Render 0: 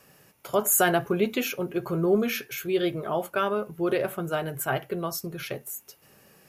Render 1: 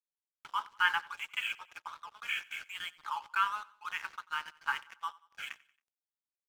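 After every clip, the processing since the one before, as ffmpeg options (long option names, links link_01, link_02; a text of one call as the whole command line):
ffmpeg -i in.wav -af "afftfilt=real='re*between(b*sr/4096,820,3400)':imag='im*between(b*sr/4096,820,3400)':win_size=4096:overlap=0.75,aeval=exprs='sgn(val(0))*max(abs(val(0))-0.00447,0)':channel_layout=same,aecho=1:1:91|182|273:0.0794|0.0357|0.0161" out.wav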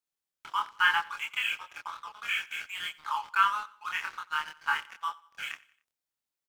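ffmpeg -i in.wav -filter_complex "[0:a]asplit=2[link_01][link_02];[link_02]adelay=26,volume=-2.5dB[link_03];[link_01][link_03]amix=inputs=2:normalize=0,volume=3dB" out.wav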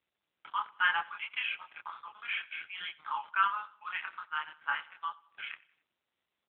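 ffmpeg -i in.wav -af "volume=-3dB" -ar 8000 -c:a libopencore_amrnb -b:a 10200 out.amr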